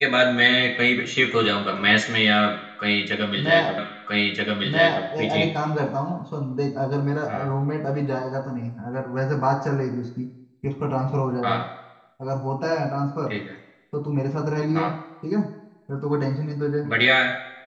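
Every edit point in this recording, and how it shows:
3.78 repeat of the last 1.28 s

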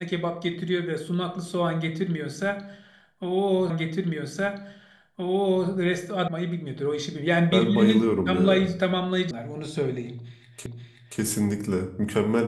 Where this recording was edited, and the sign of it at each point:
3.7 repeat of the last 1.97 s
6.28 sound cut off
9.31 sound cut off
10.66 repeat of the last 0.53 s

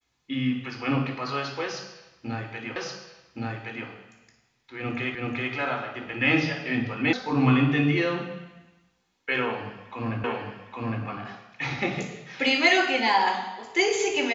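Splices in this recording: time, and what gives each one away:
2.76 repeat of the last 1.12 s
5.15 repeat of the last 0.38 s
7.13 sound cut off
10.24 repeat of the last 0.81 s

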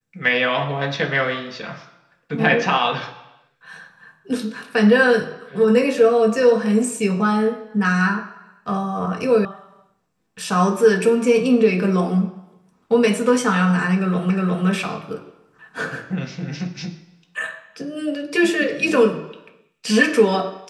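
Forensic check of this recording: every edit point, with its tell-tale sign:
9.45 sound cut off
14.3 repeat of the last 0.36 s

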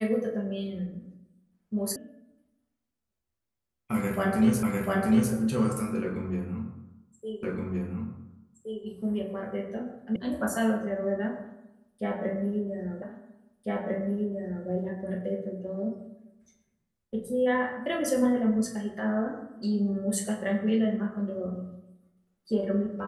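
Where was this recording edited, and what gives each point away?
1.96 sound cut off
4.63 repeat of the last 0.7 s
7.43 repeat of the last 1.42 s
10.16 sound cut off
13.02 repeat of the last 1.65 s

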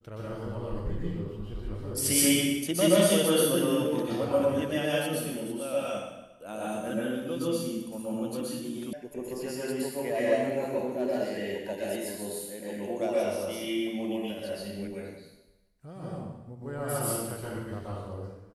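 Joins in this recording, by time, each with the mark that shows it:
8.93 sound cut off

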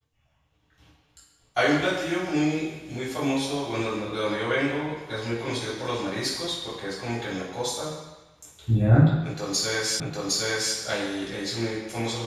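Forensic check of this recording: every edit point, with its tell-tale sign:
10 repeat of the last 0.76 s

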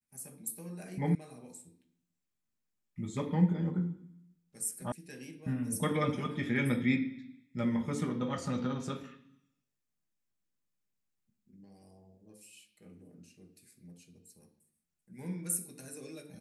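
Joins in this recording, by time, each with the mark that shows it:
1.15 sound cut off
4.92 sound cut off

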